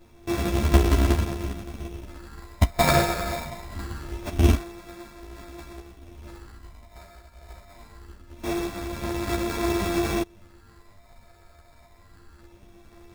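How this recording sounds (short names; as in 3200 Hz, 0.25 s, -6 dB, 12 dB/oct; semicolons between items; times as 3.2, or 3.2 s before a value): a buzz of ramps at a fixed pitch in blocks of 128 samples; phasing stages 6, 0.24 Hz, lowest notch 280–4300 Hz; aliases and images of a low sample rate 3000 Hz, jitter 0%; a shimmering, thickened sound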